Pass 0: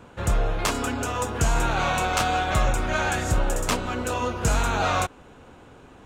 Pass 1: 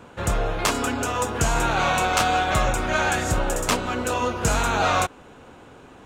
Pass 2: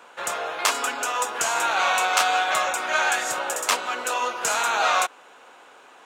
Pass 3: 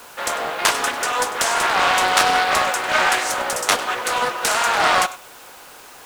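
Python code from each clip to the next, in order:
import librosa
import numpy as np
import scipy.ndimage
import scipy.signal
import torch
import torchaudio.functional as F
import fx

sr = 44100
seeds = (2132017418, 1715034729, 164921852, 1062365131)

y1 = fx.low_shelf(x, sr, hz=110.0, db=-6.5)
y1 = y1 * librosa.db_to_amplitude(3.0)
y2 = scipy.signal.sosfilt(scipy.signal.butter(2, 730.0, 'highpass', fs=sr, output='sos'), y1)
y2 = y2 * librosa.db_to_amplitude(2.0)
y3 = y2 + 10.0 ** (-17.0 / 20.0) * np.pad(y2, (int(99 * sr / 1000.0), 0))[:len(y2)]
y3 = fx.quant_dither(y3, sr, seeds[0], bits=8, dither='triangular')
y3 = fx.doppler_dist(y3, sr, depth_ms=0.58)
y3 = y3 * librosa.db_to_amplitude(4.5)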